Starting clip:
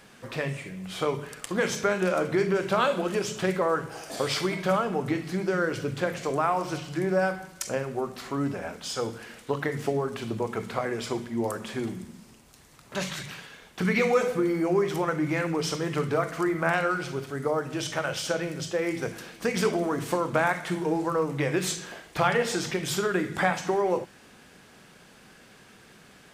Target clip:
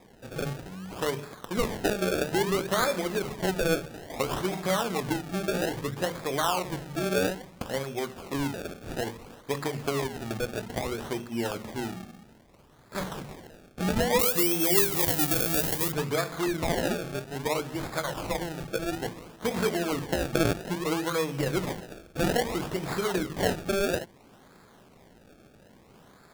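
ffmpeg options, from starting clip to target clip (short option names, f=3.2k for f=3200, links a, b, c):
-filter_complex "[0:a]acrusher=samples=30:mix=1:aa=0.000001:lfo=1:lforange=30:lforate=0.6,asettb=1/sr,asplit=3[a][b][c];[a]atrim=end=14.194[d];[b]atrim=start=14.19:end=15.92,asetpts=PTS-STARTPTS,afade=t=in:d=0.004:c=qsin,afade=t=out:st=1.726:d=0.004:c=qsin,aemphasis=mode=production:type=75fm[e];[c]atrim=start=15.916[f];[d][e]acrossfade=d=0.004:c1=hsin:c2=qsin[g];[g][f]acrossfade=d=0.004:c1=qsin:c2=hsin,volume=-2dB"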